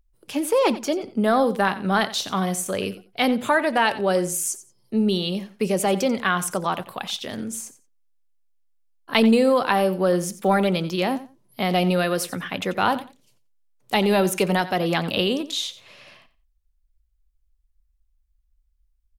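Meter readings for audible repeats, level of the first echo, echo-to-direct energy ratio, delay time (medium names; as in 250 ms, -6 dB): 2, -15.5 dB, -15.5 dB, 89 ms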